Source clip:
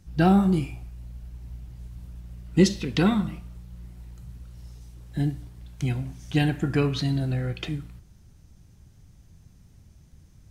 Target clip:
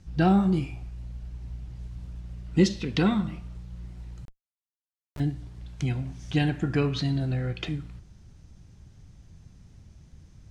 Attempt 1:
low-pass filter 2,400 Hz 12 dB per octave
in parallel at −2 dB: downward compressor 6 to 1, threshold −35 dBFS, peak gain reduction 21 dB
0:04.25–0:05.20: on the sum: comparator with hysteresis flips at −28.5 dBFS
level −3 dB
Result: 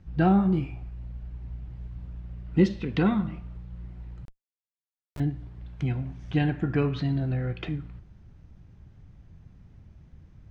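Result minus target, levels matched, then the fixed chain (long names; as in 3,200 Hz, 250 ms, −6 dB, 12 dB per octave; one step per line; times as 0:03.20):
8,000 Hz band −15.0 dB
low-pass filter 6,800 Hz 12 dB per octave
in parallel at −2 dB: downward compressor 6 to 1, threshold −35 dBFS, peak gain reduction 21 dB
0:04.25–0:05.20: on the sum: comparator with hysteresis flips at −28.5 dBFS
level −3 dB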